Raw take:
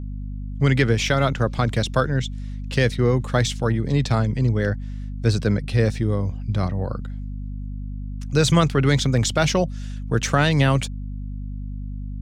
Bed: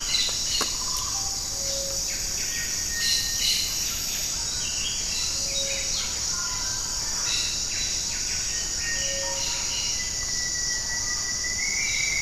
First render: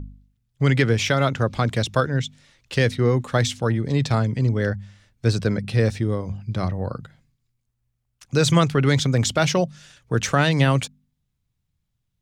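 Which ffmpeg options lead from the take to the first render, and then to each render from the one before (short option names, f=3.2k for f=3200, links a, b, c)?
-af "bandreject=f=50:t=h:w=4,bandreject=f=100:t=h:w=4,bandreject=f=150:t=h:w=4,bandreject=f=200:t=h:w=4,bandreject=f=250:t=h:w=4"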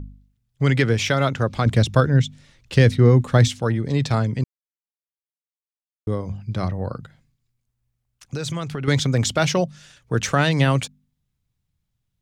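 -filter_complex "[0:a]asettb=1/sr,asplit=3[a][b][c];[a]atrim=end=1.664[d];[b]atrim=start=1.66:end=3.48,asetpts=PTS-STARTPTS,afade=t=in:d=0.004:c=qsin,afade=t=out:st=1.816:d=0.004:c=qsin,lowshelf=f=300:g=8.5[e];[c]atrim=start=3.476[f];[d][e]acrossfade=d=0.004:c1=hsin:c2=qsin[g];[g][f]acrossfade=d=0.004:c1=qsin:c2=hsin,asettb=1/sr,asplit=3[h][i][j];[h]atrim=end=6.924[k];[i]atrim=start=6.92:end=8.88,asetpts=PTS-STARTPTS,afade=t=in:d=0.004:c=qsin,afade=t=out:st=1.956:d=0.004:c=qsin,acompressor=threshold=-24dB:ratio=6:attack=3.2:release=140:knee=1:detection=peak[l];[j]atrim=start=8.876[m];[k][l]acrossfade=d=0.004:c1=hsin:c2=qsin[n];[n][m]acrossfade=d=0.004:c1=qsin:c2=hsin,asplit=3[o][p][q];[o]atrim=end=4.44,asetpts=PTS-STARTPTS,afade=t=out:st=4.436:d=0.004:c=hsin[r];[p]atrim=start=4.44:end=6.07,asetpts=PTS-STARTPTS,volume=0[s];[q]atrim=start=6.07,asetpts=PTS-STARTPTS,afade=t=in:d=0.004:c=hsin[t];[r][s][t]concat=n=3:v=0:a=1"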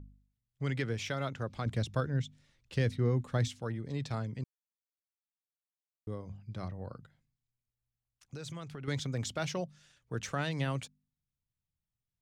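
-af "volume=-15.5dB"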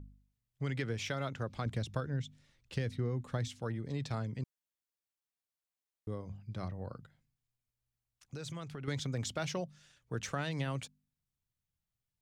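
-af "acompressor=threshold=-31dB:ratio=6"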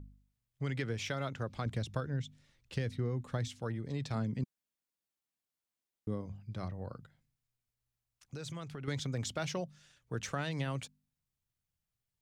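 -filter_complex "[0:a]asettb=1/sr,asplit=3[a][b][c];[a]atrim=end=4.154[d];[b]atrim=start=4.15:end=6.26,asetpts=PTS-STARTPTS,afade=t=in:d=0.004:c=qsin,afade=t=out:st=2.106:d=0.004:c=qsin,equalizer=f=220:t=o:w=1.1:g=7[e];[c]atrim=start=6.256[f];[d][e]acrossfade=d=0.004:c1=hsin:c2=qsin[g];[g][f]acrossfade=d=0.004:c1=qsin:c2=hsin"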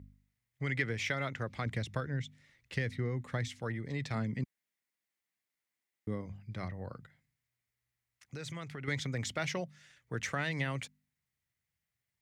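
-af "highpass=59,equalizer=f=2k:w=2.9:g=12"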